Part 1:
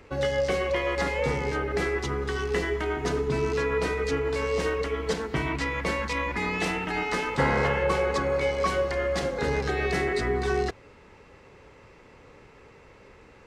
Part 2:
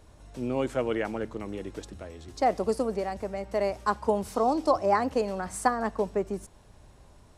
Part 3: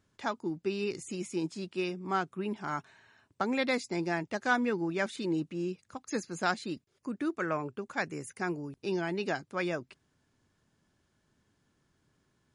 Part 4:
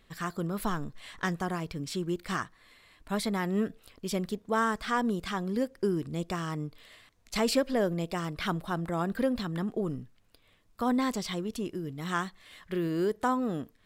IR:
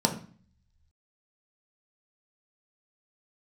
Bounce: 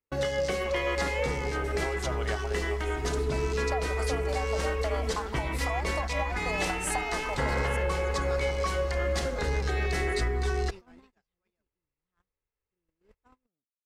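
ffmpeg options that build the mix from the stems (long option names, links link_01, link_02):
-filter_complex "[0:a]acontrast=25,volume=-6dB[link_01];[1:a]lowshelf=frequency=480:width_type=q:width=3:gain=-13.5,acompressor=threshold=-29dB:ratio=6,adelay=1300,volume=0dB[link_02];[2:a]adelay=1850,volume=-13dB[link_03];[3:a]lowpass=frequency=3300:poles=1,volume=-15.5dB[link_04];[link_01][link_02][link_03]amix=inputs=3:normalize=0,asubboost=boost=5.5:cutoff=70,alimiter=limit=-19.5dB:level=0:latency=1:release=474,volume=0dB[link_05];[link_04][link_05]amix=inputs=2:normalize=0,agate=range=-43dB:threshold=-37dB:ratio=16:detection=peak,highshelf=frequency=5100:gain=8"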